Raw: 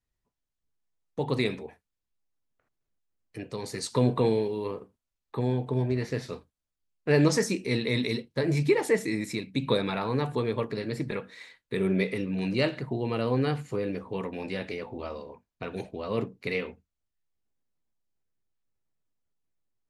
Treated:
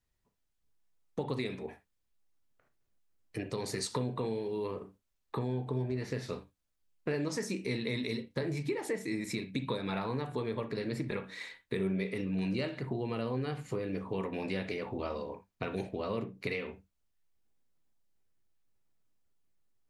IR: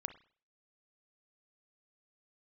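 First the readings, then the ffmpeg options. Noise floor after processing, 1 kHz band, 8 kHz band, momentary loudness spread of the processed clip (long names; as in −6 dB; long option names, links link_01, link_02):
−80 dBFS, −5.5 dB, −5.5 dB, 8 LU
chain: -filter_complex "[0:a]acompressor=threshold=-35dB:ratio=6[link_01];[1:a]atrim=start_sample=2205,afade=type=out:start_time=0.13:duration=0.01,atrim=end_sample=6174[link_02];[link_01][link_02]afir=irnorm=-1:irlink=0,volume=5.5dB"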